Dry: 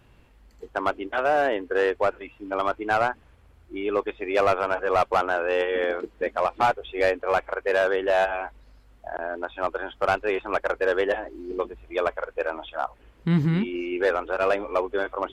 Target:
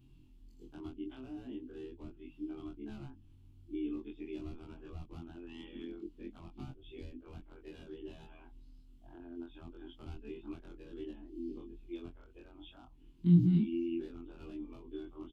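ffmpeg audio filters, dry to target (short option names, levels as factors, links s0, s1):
-filter_complex "[0:a]afftfilt=real='re':imag='-im':win_size=2048:overlap=0.75,acrossover=split=270[s0][s1];[s1]acompressor=threshold=0.0141:ratio=10[s2];[s0][s2]amix=inputs=2:normalize=0,firequalizer=gain_entry='entry(210,0);entry(320,3);entry(510,-27);entry(830,-17);entry(1800,-23);entry(2900,-6);entry(6000,-7)':delay=0.05:min_phase=1"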